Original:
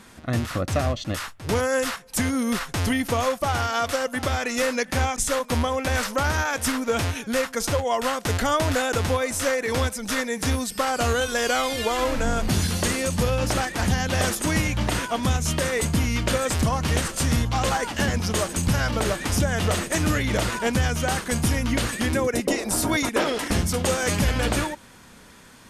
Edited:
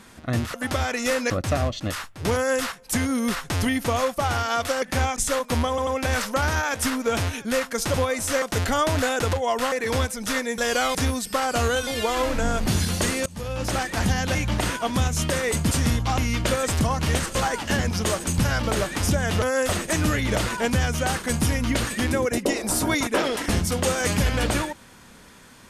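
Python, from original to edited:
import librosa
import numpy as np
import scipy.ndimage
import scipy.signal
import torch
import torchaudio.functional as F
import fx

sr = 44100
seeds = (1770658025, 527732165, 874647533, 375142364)

y = fx.edit(x, sr, fx.duplicate(start_s=1.59, length_s=0.27, to_s=19.71),
    fx.move(start_s=4.06, length_s=0.76, to_s=0.54),
    fx.stutter(start_s=5.69, slice_s=0.09, count=3),
    fx.swap(start_s=7.76, length_s=0.39, other_s=9.06, other_length_s=0.48),
    fx.move(start_s=11.32, length_s=0.37, to_s=10.4),
    fx.fade_in_from(start_s=13.08, length_s=0.58, floor_db=-23.0),
    fx.cut(start_s=14.17, length_s=0.47),
    fx.move(start_s=17.17, length_s=0.47, to_s=16.0), tone=tone)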